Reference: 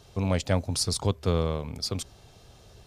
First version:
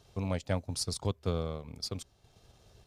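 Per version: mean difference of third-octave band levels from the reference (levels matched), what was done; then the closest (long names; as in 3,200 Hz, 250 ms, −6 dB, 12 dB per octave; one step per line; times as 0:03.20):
2.0 dB: transient designer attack +2 dB, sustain −7 dB
level −7.5 dB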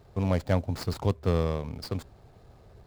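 3.5 dB: running median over 15 samples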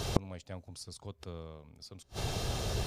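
14.0 dB: gate with flip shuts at −29 dBFS, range −37 dB
level +18 dB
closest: first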